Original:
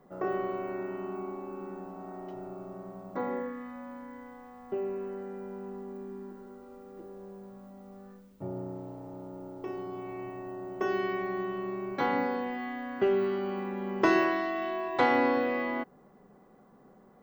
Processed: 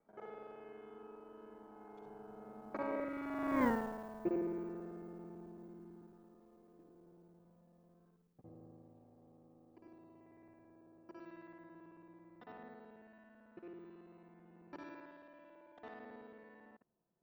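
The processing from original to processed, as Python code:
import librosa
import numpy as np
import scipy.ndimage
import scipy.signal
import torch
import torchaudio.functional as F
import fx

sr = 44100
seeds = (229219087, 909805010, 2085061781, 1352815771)

y = fx.local_reverse(x, sr, ms=49.0)
y = fx.doppler_pass(y, sr, speed_mps=43, closest_m=3.2, pass_at_s=3.65)
y = y * librosa.db_to_amplitude(16.0)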